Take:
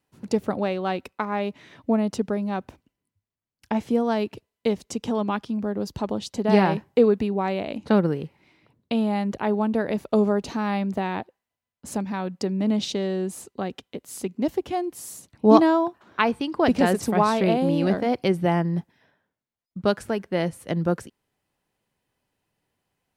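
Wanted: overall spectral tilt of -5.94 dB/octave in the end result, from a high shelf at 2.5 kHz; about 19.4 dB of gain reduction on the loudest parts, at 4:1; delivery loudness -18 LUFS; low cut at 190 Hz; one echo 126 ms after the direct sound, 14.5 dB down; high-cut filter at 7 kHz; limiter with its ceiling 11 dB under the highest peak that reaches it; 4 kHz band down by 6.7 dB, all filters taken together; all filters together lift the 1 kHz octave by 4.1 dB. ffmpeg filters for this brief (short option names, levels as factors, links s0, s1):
-af "highpass=190,lowpass=7000,equalizer=f=1000:t=o:g=6,highshelf=f=2500:g=-3.5,equalizer=f=4000:t=o:g=-6,acompressor=threshold=0.0251:ratio=4,alimiter=level_in=1.26:limit=0.0631:level=0:latency=1,volume=0.794,aecho=1:1:126:0.188,volume=9.44"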